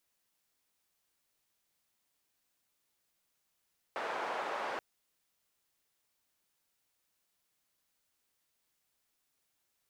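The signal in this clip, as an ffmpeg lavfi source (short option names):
-f lavfi -i "anoisesrc=c=white:d=0.83:r=44100:seed=1,highpass=f=670,lowpass=f=880,volume=-14.7dB"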